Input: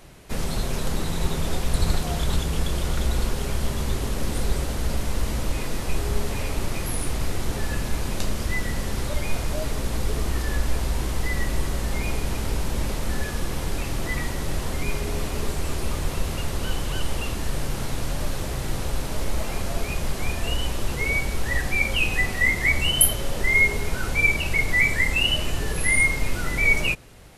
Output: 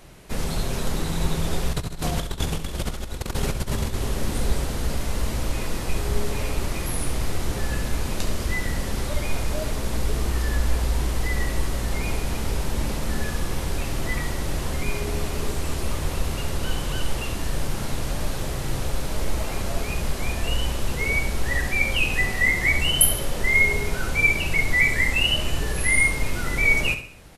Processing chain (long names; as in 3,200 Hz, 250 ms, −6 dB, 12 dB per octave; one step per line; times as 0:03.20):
0:01.73–0:03.94: compressor whose output falls as the input rises −26 dBFS, ratio −0.5
repeating echo 68 ms, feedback 41%, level −10 dB